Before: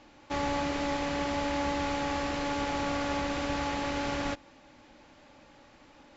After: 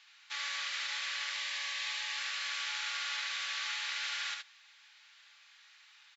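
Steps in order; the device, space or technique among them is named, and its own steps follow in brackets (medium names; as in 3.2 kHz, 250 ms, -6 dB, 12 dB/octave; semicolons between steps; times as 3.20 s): headphones lying on a table (high-pass 1.5 kHz 24 dB/octave; peaking EQ 3.8 kHz +5 dB 0.57 oct); 1.32–2.18 s: band-stop 1.4 kHz, Q 5.4; delay 72 ms -4.5 dB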